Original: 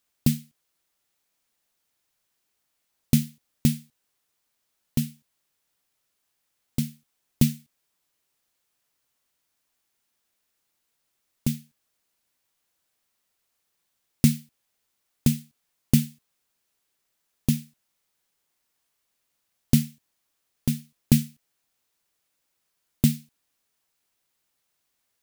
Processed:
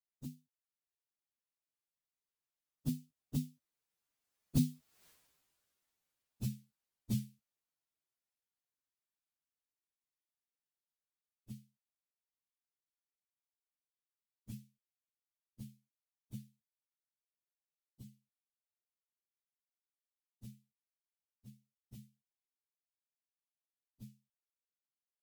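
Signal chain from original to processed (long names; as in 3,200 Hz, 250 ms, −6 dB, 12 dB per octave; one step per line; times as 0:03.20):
partials spread apart or drawn together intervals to 112%
source passing by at 0:05.07, 28 m/s, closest 1.9 metres
level +18 dB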